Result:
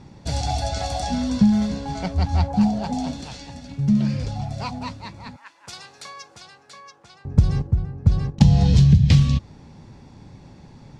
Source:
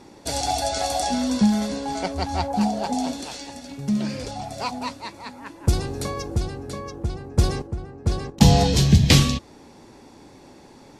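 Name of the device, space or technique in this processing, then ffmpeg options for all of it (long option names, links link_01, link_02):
jukebox: -filter_complex "[0:a]asettb=1/sr,asplit=3[link_01][link_02][link_03];[link_01]atrim=end=5.364[link_04];[link_02]atrim=start=5.36:end=7.25,asetpts=PTS-STARTPTS,afade=type=in:duration=0.004:curve=qsin,afade=type=out:start_time=1.886:duration=0.004:curve=qsin,highpass=1100[link_05];[link_03]atrim=start=7.246[link_06];[link_04][link_05]acrossfade=duration=0.004:curve1=hsin:curve2=qsin[link_07];[link_07][link_06]acrossfade=duration=0.004:curve1=qsin:curve2=hsin,lowpass=6200,lowshelf=frequency=220:width_type=q:width=1.5:gain=11.5,acompressor=threshold=-8dB:ratio=6,volume=-2.5dB"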